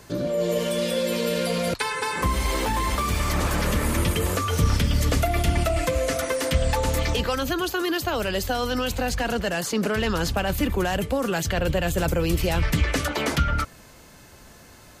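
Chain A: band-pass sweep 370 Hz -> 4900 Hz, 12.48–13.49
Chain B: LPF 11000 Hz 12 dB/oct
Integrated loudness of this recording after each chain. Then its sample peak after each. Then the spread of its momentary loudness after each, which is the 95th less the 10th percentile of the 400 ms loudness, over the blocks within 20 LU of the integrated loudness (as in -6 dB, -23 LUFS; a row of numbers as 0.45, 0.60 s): -33.0, -24.5 LUFS; -18.5, -10.0 dBFS; 7, 3 LU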